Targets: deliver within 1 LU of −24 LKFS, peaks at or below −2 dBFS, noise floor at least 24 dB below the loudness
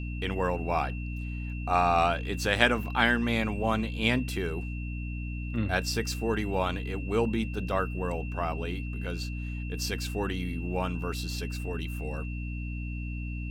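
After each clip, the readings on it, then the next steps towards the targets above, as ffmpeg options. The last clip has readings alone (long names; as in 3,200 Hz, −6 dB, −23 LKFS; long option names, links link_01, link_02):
mains hum 60 Hz; hum harmonics up to 300 Hz; level of the hum −32 dBFS; interfering tone 2,700 Hz; level of the tone −44 dBFS; integrated loudness −30.0 LKFS; sample peak −5.5 dBFS; target loudness −24.0 LKFS
→ -af "bandreject=frequency=60:width_type=h:width=4,bandreject=frequency=120:width_type=h:width=4,bandreject=frequency=180:width_type=h:width=4,bandreject=frequency=240:width_type=h:width=4,bandreject=frequency=300:width_type=h:width=4"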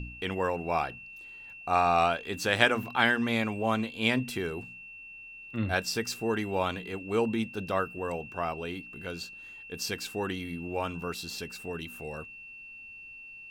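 mains hum none found; interfering tone 2,700 Hz; level of the tone −44 dBFS
→ -af "bandreject=frequency=2700:width=30"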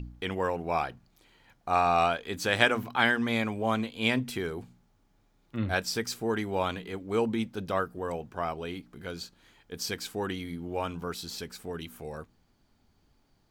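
interfering tone none found; integrated loudness −30.5 LKFS; sample peak −6.0 dBFS; target loudness −24.0 LKFS
→ -af "volume=6.5dB,alimiter=limit=-2dB:level=0:latency=1"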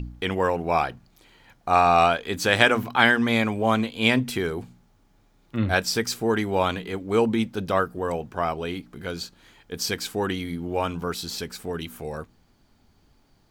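integrated loudness −24.0 LKFS; sample peak −2.0 dBFS; background noise floor −61 dBFS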